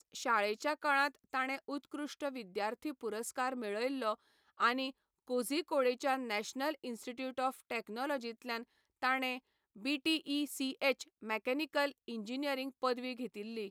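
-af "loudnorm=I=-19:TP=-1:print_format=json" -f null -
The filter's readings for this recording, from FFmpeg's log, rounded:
"input_i" : "-36.9",
"input_tp" : "-18.3",
"input_lra" : "2.4",
"input_thresh" : "-47.0",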